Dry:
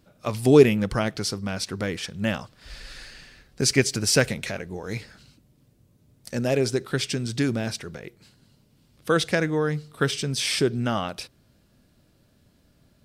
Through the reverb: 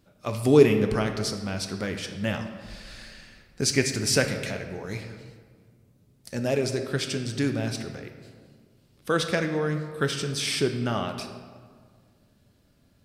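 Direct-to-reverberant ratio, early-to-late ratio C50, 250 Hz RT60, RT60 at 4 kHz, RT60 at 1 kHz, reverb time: 5.5 dB, 8.0 dB, 2.0 s, 1.0 s, 1.7 s, 1.8 s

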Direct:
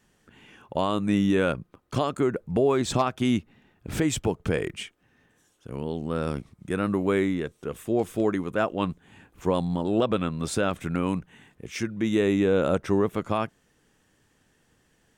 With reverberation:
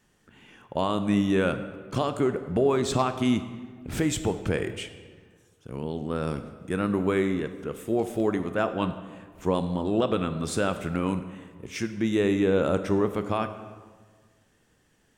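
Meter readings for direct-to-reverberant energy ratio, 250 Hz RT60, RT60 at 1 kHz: 9.5 dB, 1.8 s, 1.5 s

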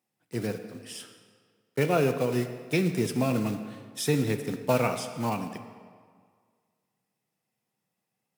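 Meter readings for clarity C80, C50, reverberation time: 10.0 dB, 9.0 dB, 1.9 s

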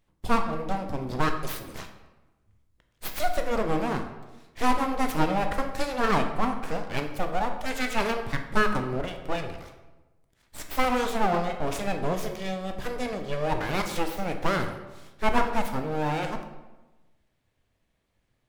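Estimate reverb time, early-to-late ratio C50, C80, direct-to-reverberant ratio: 1.1 s, 8.0 dB, 10.0 dB, 5.0 dB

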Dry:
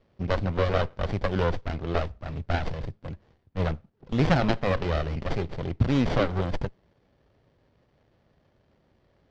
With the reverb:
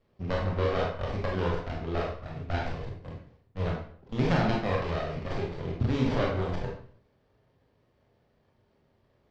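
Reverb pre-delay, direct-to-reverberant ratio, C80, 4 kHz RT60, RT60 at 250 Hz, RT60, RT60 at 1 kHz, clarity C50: 23 ms, -2.5 dB, 7.5 dB, 0.45 s, 0.55 s, 0.55 s, 0.55 s, 3.5 dB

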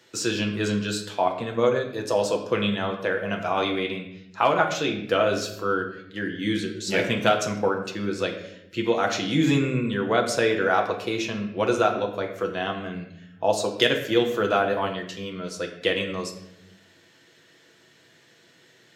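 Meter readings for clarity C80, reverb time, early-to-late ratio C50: 10.0 dB, 0.85 s, 8.0 dB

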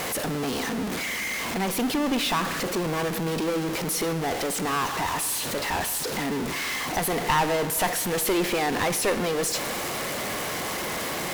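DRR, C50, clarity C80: 11.5 dB, 12.0 dB, 13.0 dB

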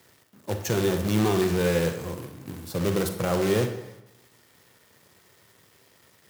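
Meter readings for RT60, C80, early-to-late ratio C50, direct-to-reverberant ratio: 0.90 s, 10.0 dB, 8.0 dB, 6.0 dB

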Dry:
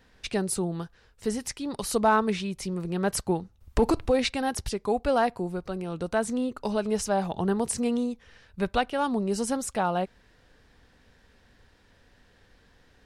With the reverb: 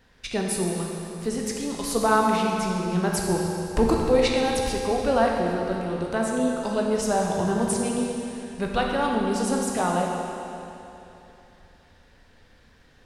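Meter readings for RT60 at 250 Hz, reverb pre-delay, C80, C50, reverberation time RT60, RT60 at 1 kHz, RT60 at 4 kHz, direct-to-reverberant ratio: 2.9 s, 14 ms, 1.5 dB, 0.5 dB, 3.0 s, 3.0 s, 2.8 s, -1.5 dB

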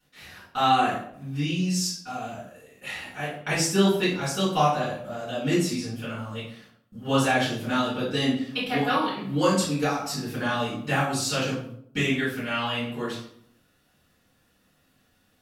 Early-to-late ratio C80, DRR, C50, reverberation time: 7.5 dB, -12.0 dB, 3.0 dB, 0.65 s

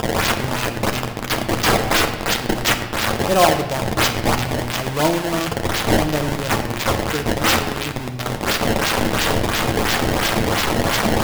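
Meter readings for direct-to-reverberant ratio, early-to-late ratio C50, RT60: 4.5 dB, 9.0 dB, 1.1 s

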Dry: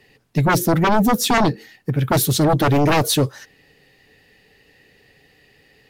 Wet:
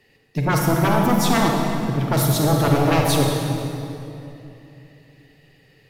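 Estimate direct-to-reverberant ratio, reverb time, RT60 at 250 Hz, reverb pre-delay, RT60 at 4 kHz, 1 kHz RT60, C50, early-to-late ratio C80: 0.0 dB, 2.9 s, 3.5 s, 35 ms, 2.1 s, 2.7 s, 0.5 dB, 2.0 dB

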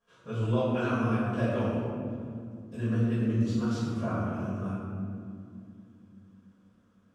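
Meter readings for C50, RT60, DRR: -3.0 dB, 2.6 s, -14.0 dB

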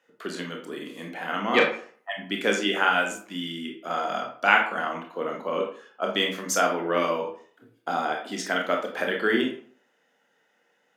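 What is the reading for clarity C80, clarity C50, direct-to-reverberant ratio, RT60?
11.0 dB, 6.0 dB, 1.0 dB, 0.50 s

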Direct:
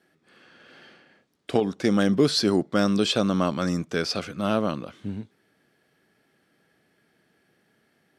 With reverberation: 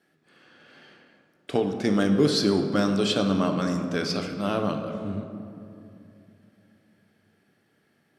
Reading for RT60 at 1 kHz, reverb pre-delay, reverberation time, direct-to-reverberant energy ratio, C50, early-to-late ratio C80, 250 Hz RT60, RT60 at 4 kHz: 2.4 s, 7 ms, 2.7 s, 4.5 dB, 6.5 dB, 7.5 dB, 3.6 s, 1.2 s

